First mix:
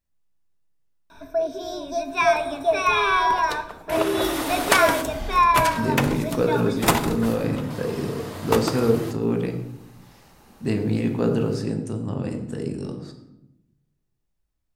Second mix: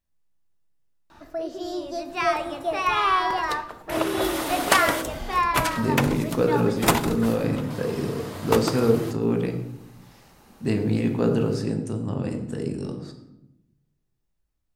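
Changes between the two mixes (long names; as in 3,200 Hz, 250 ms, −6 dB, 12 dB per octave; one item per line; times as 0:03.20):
first sound: remove EQ curve with evenly spaced ripples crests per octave 1.6, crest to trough 16 dB
second sound: send −7.0 dB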